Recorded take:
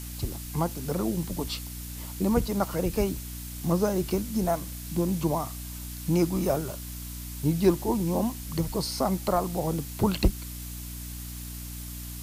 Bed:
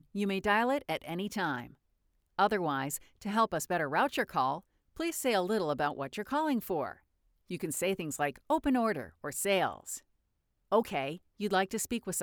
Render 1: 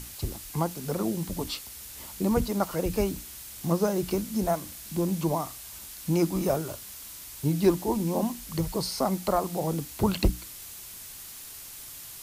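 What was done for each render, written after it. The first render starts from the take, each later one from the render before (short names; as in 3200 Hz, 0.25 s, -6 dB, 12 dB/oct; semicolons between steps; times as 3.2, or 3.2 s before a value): notches 60/120/180/240/300 Hz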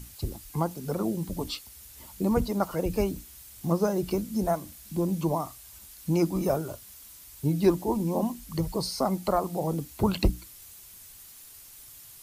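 denoiser 8 dB, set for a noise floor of -43 dBFS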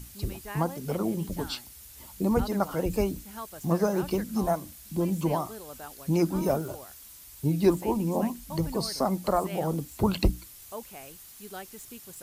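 add bed -12.5 dB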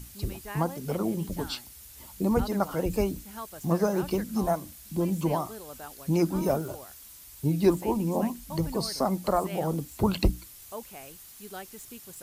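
nothing audible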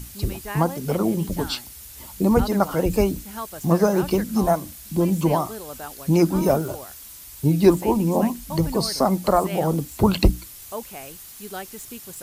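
gain +7 dB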